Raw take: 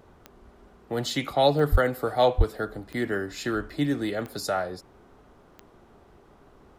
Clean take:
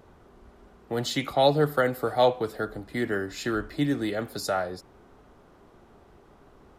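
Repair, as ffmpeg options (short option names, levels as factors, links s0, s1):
-filter_complex "[0:a]adeclick=t=4,asplit=3[s0][s1][s2];[s0]afade=t=out:st=1.71:d=0.02[s3];[s1]highpass=f=140:w=0.5412,highpass=f=140:w=1.3066,afade=t=in:st=1.71:d=0.02,afade=t=out:st=1.83:d=0.02[s4];[s2]afade=t=in:st=1.83:d=0.02[s5];[s3][s4][s5]amix=inputs=3:normalize=0,asplit=3[s6][s7][s8];[s6]afade=t=out:st=2.37:d=0.02[s9];[s7]highpass=f=140:w=0.5412,highpass=f=140:w=1.3066,afade=t=in:st=2.37:d=0.02,afade=t=out:st=2.49:d=0.02[s10];[s8]afade=t=in:st=2.49:d=0.02[s11];[s9][s10][s11]amix=inputs=3:normalize=0"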